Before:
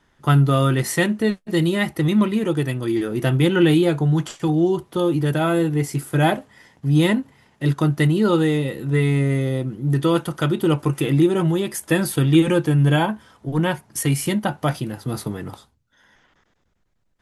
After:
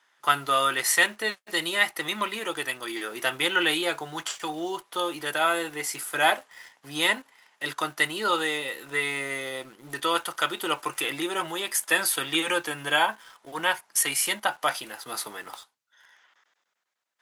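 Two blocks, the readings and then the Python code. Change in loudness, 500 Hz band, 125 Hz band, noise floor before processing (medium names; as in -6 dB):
-6.0 dB, -9.5 dB, -29.0 dB, -66 dBFS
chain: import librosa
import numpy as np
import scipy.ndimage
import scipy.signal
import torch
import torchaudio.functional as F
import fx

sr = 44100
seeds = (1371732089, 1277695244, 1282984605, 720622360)

p1 = scipy.signal.sosfilt(scipy.signal.butter(2, 960.0, 'highpass', fs=sr, output='sos'), x)
p2 = fx.quant_dither(p1, sr, seeds[0], bits=8, dither='none')
y = p1 + (p2 * librosa.db_to_amplitude(-6.5))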